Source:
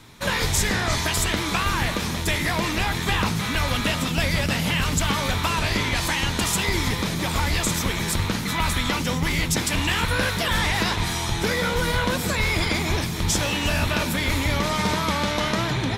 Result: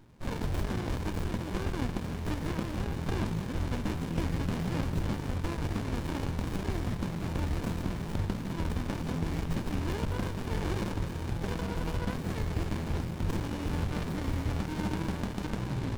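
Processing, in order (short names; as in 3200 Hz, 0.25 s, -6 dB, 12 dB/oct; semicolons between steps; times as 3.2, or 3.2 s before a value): running maximum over 65 samples; gain -6.5 dB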